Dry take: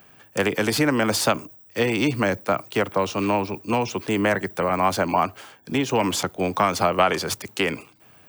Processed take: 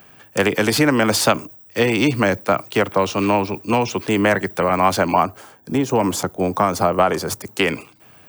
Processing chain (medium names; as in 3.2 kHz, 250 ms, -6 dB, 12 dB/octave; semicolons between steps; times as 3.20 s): 5.22–7.59 s: peaking EQ 2.9 kHz -10 dB 1.7 oct; trim +4.5 dB